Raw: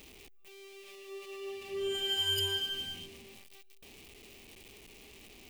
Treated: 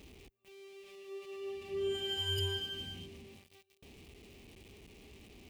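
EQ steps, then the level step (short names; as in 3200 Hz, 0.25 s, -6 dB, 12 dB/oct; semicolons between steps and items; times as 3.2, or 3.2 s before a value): HPF 66 Hz; tilt -3.5 dB/oct; high shelf 2200 Hz +8 dB; -5.0 dB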